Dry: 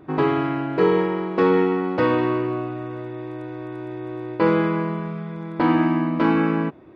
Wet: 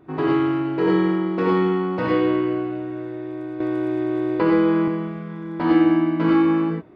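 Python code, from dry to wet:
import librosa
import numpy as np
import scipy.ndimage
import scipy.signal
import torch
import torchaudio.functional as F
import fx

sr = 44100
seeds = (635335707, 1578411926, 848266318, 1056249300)

y = fx.rev_gated(x, sr, seeds[0], gate_ms=130, shape='rising', drr_db=-2.0)
y = fx.band_squash(y, sr, depth_pct=70, at=(3.6, 4.88))
y = y * librosa.db_to_amplitude(-5.5)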